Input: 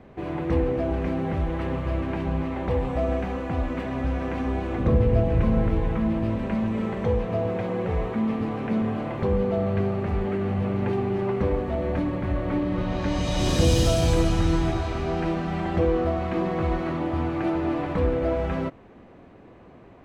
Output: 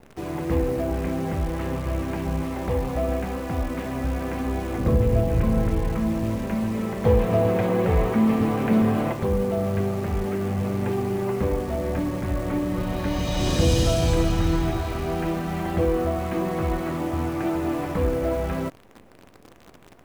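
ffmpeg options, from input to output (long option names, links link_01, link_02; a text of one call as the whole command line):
ffmpeg -i in.wav -filter_complex "[0:a]asettb=1/sr,asplit=3[link_01][link_02][link_03];[link_01]atrim=end=7.054[link_04];[link_02]atrim=start=7.05:end=9.13,asetpts=PTS-STARTPTS,afade=type=in:duration=0.004:curve=qsin,afade=type=out:start_time=2.076:duration=0.004:curve=qsin,acontrast=41[link_05];[link_03]atrim=start=9.126[link_06];[link_04][link_05]acrossfade=duration=0.004:curve1=hsin:curve2=qsin[link_07];[link_07][link_06]acrossfade=duration=0.004:curve1=qsin:curve2=hsin,acrusher=bits=8:dc=4:mix=0:aa=0.000001" out.wav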